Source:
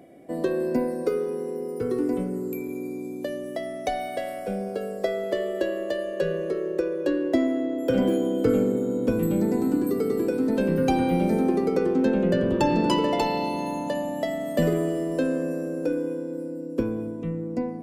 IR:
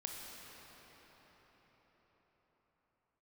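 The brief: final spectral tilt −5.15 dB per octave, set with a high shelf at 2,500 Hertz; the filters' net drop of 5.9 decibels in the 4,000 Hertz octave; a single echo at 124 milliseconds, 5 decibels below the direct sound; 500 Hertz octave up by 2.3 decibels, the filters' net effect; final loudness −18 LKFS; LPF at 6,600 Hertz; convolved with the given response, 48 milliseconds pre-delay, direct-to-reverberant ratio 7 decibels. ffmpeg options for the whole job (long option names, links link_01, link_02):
-filter_complex "[0:a]lowpass=6600,equalizer=frequency=500:width_type=o:gain=3,highshelf=frequency=2500:gain=-3,equalizer=frequency=4000:width_type=o:gain=-5.5,aecho=1:1:124:0.562,asplit=2[link_01][link_02];[1:a]atrim=start_sample=2205,adelay=48[link_03];[link_02][link_03]afir=irnorm=-1:irlink=0,volume=-6.5dB[link_04];[link_01][link_04]amix=inputs=2:normalize=0,volume=5dB"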